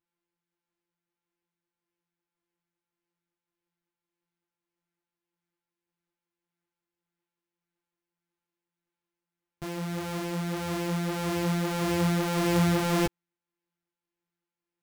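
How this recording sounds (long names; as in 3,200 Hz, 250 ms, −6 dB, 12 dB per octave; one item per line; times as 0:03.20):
a buzz of ramps at a fixed pitch in blocks of 256 samples
tremolo triangle 1.7 Hz, depth 30%
a shimmering, thickened sound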